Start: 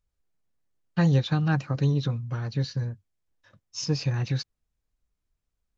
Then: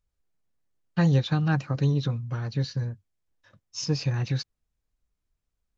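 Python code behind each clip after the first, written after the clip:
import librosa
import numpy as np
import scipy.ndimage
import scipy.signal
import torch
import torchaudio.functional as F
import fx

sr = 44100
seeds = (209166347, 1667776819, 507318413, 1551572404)

y = x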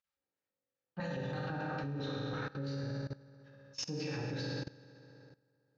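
y = fx.filter_lfo_bandpass(x, sr, shape='square', hz=3.0, low_hz=460.0, high_hz=2100.0, q=0.76)
y = fx.rev_fdn(y, sr, rt60_s=2.4, lf_ratio=0.9, hf_ratio=0.7, size_ms=11.0, drr_db=-4.5)
y = fx.level_steps(y, sr, step_db=19)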